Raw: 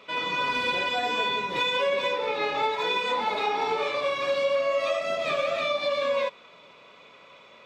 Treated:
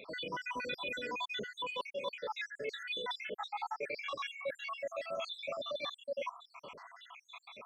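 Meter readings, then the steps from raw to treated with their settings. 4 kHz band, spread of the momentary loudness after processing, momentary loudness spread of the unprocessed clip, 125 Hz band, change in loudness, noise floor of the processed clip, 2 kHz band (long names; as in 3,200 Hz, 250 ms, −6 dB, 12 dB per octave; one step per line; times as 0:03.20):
−11.5 dB, 14 LU, 3 LU, −11.5 dB, −13.5 dB, −68 dBFS, −12.0 dB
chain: time-frequency cells dropped at random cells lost 76%
reversed playback
downward compressor 4 to 1, threshold −44 dBFS, peak gain reduction 17.5 dB
reversed playback
level +5 dB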